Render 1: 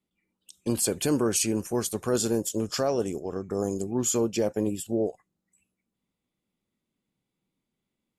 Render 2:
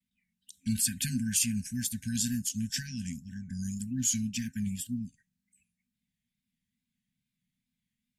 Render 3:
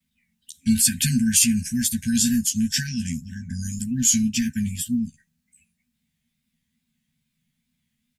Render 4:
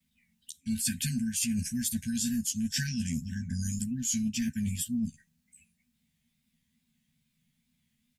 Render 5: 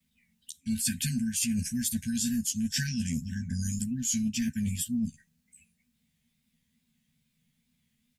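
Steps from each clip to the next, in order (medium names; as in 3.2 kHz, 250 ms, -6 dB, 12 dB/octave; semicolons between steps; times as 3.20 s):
wow and flutter 110 cents; FFT band-reject 260–1500 Hz; trim -1 dB
doubling 13 ms -4 dB; trim +8.5 dB
peaking EQ 1.5 kHz -2 dB; reverse; compression 8:1, threshold -28 dBFS, peak gain reduction 15 dB; reverse
peaking EQ 470 Hz +7 dB 0.23 oct; trim +1 dB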